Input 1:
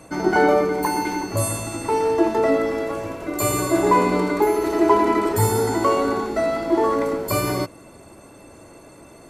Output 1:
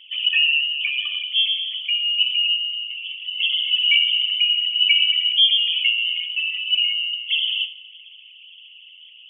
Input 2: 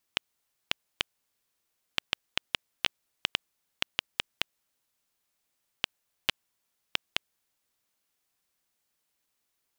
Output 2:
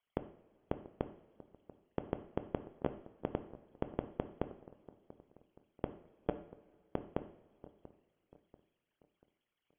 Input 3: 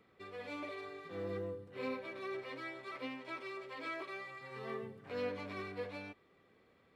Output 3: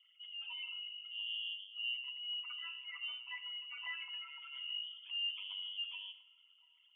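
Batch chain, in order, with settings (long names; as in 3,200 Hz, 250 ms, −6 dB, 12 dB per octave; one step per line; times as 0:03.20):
spectral envelope exaggerated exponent 3
high-frequency loss of the air 320 metres
on a send: delay with a high-pass on its return 688 ms, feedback 42%, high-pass 2,600 Hz, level −15 dB
on the sum: coupled-rooms reverb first 0.58 s, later 2.7 s, from −18 dB, DRR 9 dB
voice inversion scrambler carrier 3,300 Hz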